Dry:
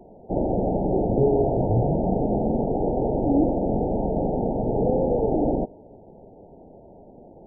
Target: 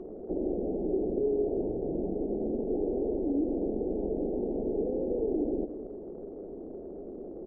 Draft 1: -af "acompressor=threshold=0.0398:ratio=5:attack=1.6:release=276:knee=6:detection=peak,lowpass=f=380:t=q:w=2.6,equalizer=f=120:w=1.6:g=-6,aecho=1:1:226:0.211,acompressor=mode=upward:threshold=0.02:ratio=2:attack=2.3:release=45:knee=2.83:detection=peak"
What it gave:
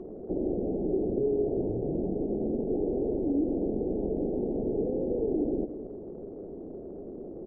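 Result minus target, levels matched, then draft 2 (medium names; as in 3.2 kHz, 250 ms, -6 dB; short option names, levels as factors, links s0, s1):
125 Hz band +4.0 dB
-af "acompressor=threshold=0.0398:ratio=5:attack=1.6:release=276:knee=6:detection=peak,lowpass=f=380:t=q:w=2.6,equalizer=f=120:w=1.6:g=-17,aecho=1:1:226:0.211,acompressor=mode=upward:threshold=0.02:ratio=2:attack=2.3:release=45:knee=2.83:detection=peak"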